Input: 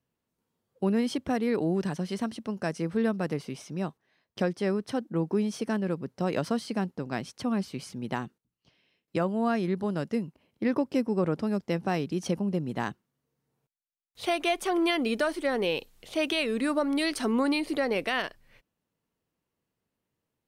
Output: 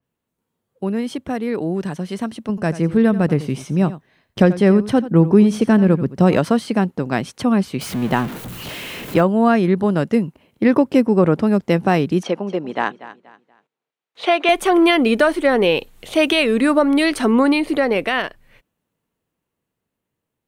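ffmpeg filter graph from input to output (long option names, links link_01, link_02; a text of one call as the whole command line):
ffmpeg -i in.wav -filter_complex "[0:a]asettb=1/sr,asplit=3[link_01][link_02][link_03];[link_01]atrim=end=2.494[link_04];[link_02]atrim=start=2.49:end=6.37,asetpts=PTS-STARTPTS,afade=type=in:duration=0.004:curve=qsin,afade=type=out:start_time=3.876:duration=0.004:curve=qsin,lowshelf=frequency=170:gain=11,aecho=1:1:87:0.178,atrim=end_sample=171108[link_05];[link_03]atrim=start=6.366[link_06];[link_04][link_05]acrossfade=duration=0.004:curve1=hsin:curve2=qsin[link_07];[link_07][link_06]acrossfade=duration=0.004:curve1=qsin:curve2=hsin,asettb=1/sr,asplit=3[link_08][link_09][link_10];[link_08]atrim=end=7.814[link_11];[link_09]atrim=start=7.81:end=9.21,asetpts=PTS-STARTPTS,afade=type=in:duration=0.004:curve=qsin,afade=type=out:start_time=1.396:duration=0.004:curve=qsin,aeval=exprs='val(0)+0.5*0.0158*sgn(val(0))':channel_layout=same,equalizer=frequency=8000:width_type=o:width=0.96:gain=-4.5[link_12];[link_10]atrim=start=9.206[link_13];[link_11][link_12]acrossfade=duration=0.004:curve1=hsin:curve2=qsin[link_14];[link_14][link_13]acrossfade=duration=0.004:curve1=qsin:curve2=hsin,asettb=1/sr,asplit=3[link_15][link_16][link_17];[link_15]atrim=end=12.234[link_18];[link_16]atrim=start=12.23:end=14.49,asetpts=PTS-STARTPTS,afade=type=in:duration=0.004:curve=qsin,afade=type=out:start_time=2.256:duration=0.004:curve=qsin,highpass=370,lowpass=3900,aecho=1:1:239|478|717:0.158|0.0507|0.0162,atrim=end_sample=99666[link_19];[link_17]atrim=start=14.486[link_20];[link_18][link_19]acrossfade=duration=0.004:curve1=hsin:curve2=qsin[link_21];[link_21][link_20]acrossfade=duration=0.004:curve1=qsin:curve2=hsin,equalizer=frequency=5100:width=2.4:gain=-5.5,dynaudnorm=framelen=340:gausssize=17:maxgain=9dB,adynamicequalizer=threshold=0.0126:dfrequency=3700:dqfactor=0.7:tfrequency=3700:tqfactor=0.7:attack=5:release=100:ratio=0.375:range=2.5:mode=cutabove:tftype=highshelf,volume=3.5dB" out.wav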